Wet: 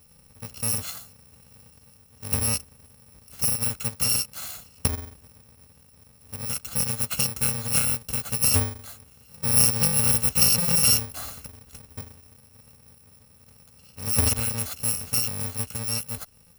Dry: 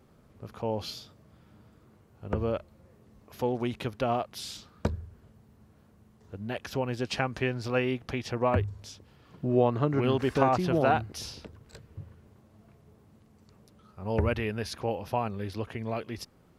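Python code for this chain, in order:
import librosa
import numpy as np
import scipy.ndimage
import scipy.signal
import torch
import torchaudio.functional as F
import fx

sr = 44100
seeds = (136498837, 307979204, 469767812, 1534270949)

y = fx.bit_reversed(x, sr, seeds[0], block=128)
y = F.gain(torch.from_numpy(y), 4.5).numpy()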